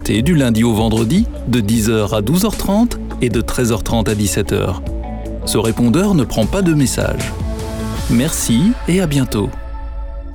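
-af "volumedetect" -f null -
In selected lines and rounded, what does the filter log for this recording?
mean_volume: -15.4 dB
max_volume: -4.0 dB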